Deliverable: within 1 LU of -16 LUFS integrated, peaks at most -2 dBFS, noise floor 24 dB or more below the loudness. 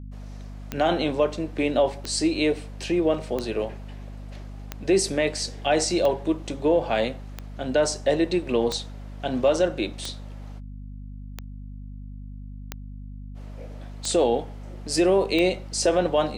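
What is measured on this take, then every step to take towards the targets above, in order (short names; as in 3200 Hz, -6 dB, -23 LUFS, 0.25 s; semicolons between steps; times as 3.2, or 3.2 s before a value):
clicks 12; hum 50 Hz; harmonics up to 250 Hz; hum level -35 dBFS; loudness -24.5 LUFS; peak -9.0 dBFS; loudness target -16.0 LUFS
-> de-click; notches 50/100/150/200/250 Hz; gain +8.5 dB; limiter -2 dBFS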